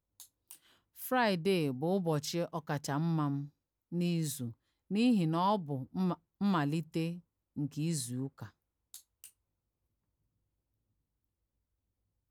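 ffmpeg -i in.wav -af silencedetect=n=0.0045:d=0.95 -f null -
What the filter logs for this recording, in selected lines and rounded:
silence_start: 9.28
silence_end: 12.31 | silence_duration: 3.03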